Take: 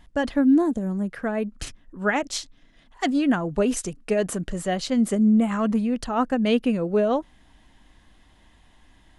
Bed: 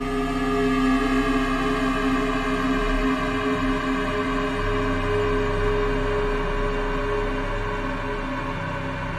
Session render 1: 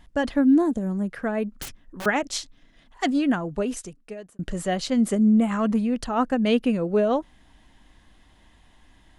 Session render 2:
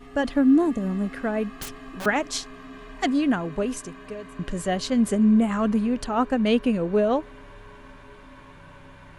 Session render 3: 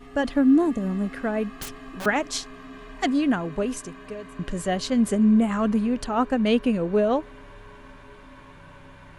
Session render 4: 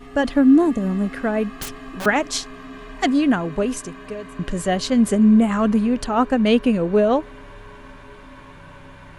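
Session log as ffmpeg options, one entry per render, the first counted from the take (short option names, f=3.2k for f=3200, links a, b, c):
-filter_complex "[0:a]asettb=1/sr,asplit=3[a][b][c];[a]atrim=end=1.624[d];[b]atrim=start=1.62:end=2.06,asetpts=PTS-STARTPTS,afade=t=in:d=0.004:c=qsin,afade=t=out:st=0.436:d=0.004:c=qsin,aeval=exprs='(mod(28.2*val(0)+1,2)-1)/28.2':c=same[e];[c]atrim=start=2.056[f];[d][e]acrossfade=d=0.004:c1=hsin:c2=qsin[g];[g][f]acrossfade=d=0.004:c1=qsin:c2=hsin,asplit=2[h][i];[h]atrim=end=4.39,asetpts=PTS-STARTPTS,afade=t=out:st=3.12:d=1.27[j];[i]atrim=start=4.39,asetpts=PTS-STARTPTS,afade=t=in:d=0.004:c=hsin[k];[j][k]concat=n=2:v=0:a=1"
-filter_complex "[1:a]volume=-19.5dB[a];[0:a][a]amix=inputs=2:normalize=0"
-af anull
-af "volume=4.5dB"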